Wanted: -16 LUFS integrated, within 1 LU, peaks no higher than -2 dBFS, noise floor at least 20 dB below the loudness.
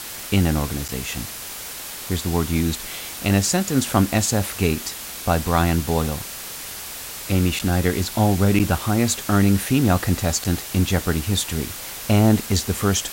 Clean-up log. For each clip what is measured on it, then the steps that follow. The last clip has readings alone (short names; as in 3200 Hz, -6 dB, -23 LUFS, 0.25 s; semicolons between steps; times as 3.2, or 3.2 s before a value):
dropouts 4; longest dropout 7.5 ms; noise floor -34 dBFS; noise floor target -42 dBFS; loudness -21.5 LUFS; peak -3.0 dBFS; loudness target -16.0 LUFS
-> interpolate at 0.88/7.59/8.59/10.44, 7.5 ms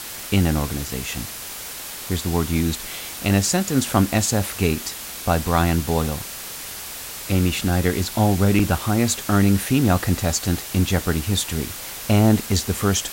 dropouts 0; noise floor -34 dBFS; noise floor target -42 dBFS
-> denoiser 8 dB, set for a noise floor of -34 dBFS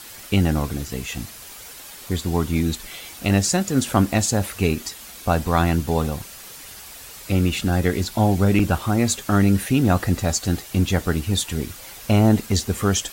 noise floor -40 dBFS; noise floor target -42 dBFS
-> denoiser 6 dB, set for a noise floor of -40 dBFS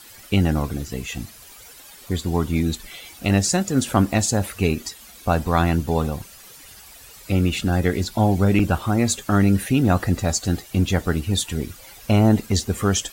noise floor -45 dBFS; loudness -21.5 LUFS; peak -3.5 dBFS; loudness target -16.0 LUFS
-> gain +5.5 dB; limiter -2 dBFS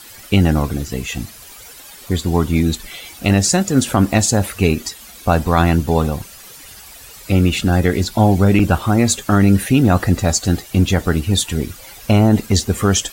loudness -16.5 LUFS; peak -2.0 dBFS; noise floor -39 dBFS